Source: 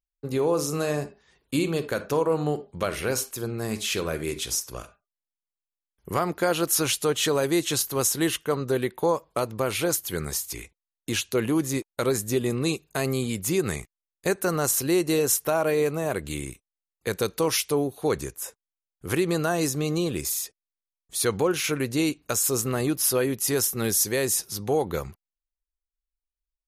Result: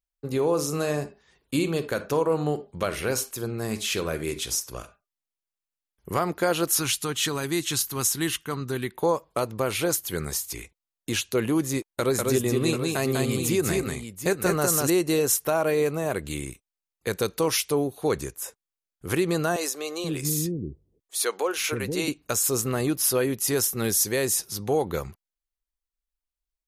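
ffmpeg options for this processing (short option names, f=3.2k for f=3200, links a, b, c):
-filter_complex "[0:a]asettb=1/sr,asplit=3[a][b][c];[a]atrim=end=6.794[d];[b]atrim=start=6.79:end=8.95,asetpts=PTS-STARTPTS,afade=t=in:d=0.004:c=qsin,afade=t=out:st=2.156:d=0.004:c=qsin,equalizer=f=540:w=1.7:g=-13[e];[c]atrim=start=8.946[f];[d][e]acrossfade=d=0.004:c1=hsin:c2=qsin[g];[g][f]acrossfade=d=0.004:c1=qsin:c2=hsin,asettb=1/sr,asplit=3[h][i][j];[h]atrim=end=11.794[k];[i]atrim=start=11.79:end=14.9,asetpts=PTS-STARTPTS,afade=t=in:d=0.004:c=qsin,afade=t=out:st=3.106:d=0.004:c=qsin,aecho=1:1:197|738:0.708|0.335,atrim=end_sample=137151[l];[j]atrim=start=14.896[m];[k][l]acrossfade=d=0.004:c1=hsin:c2=qsin[n];[n][m]acrossfade=d=0.004:c1=qsin:c2=hsin,asettb=1/sr,asplit=3[o][p][q];[o]atrim=end=19.564[r];[p]atrim=start=19.56:end=22.08,asetpts=PTS-STARTPTS,afade=t=in:d=0.004:c=qsin,afade=t=out:st=2.516:d=0.004:c=qsin,acrossover=split=370[s][t];[s]adelay=480[u];[u][t]amix=inputs=2:normalize=0,atrim=end_sample=111132[v];[q]atrim=start=22.076[w];[r][v]acrossfade=d=0.004:c1=hsin:c2=qsin[x];[x][w]acrossfade=d=0.004:c1=qsin:c2=hsin"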